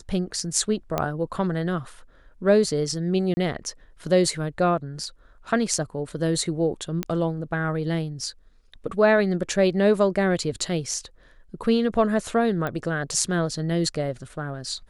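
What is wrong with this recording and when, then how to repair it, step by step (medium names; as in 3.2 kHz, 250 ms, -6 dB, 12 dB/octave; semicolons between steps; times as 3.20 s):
0.98 s: pop -10 dBFS
3.34–3.37 s: dropout 30 ms
7.03 s: pop -12 dBFS
12.67 s: pop -16 dBFS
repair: de-click; interpolate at 3.34 s, 30 ms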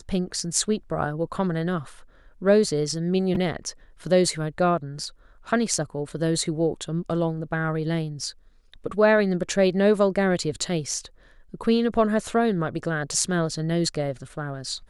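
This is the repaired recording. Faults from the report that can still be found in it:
nothing left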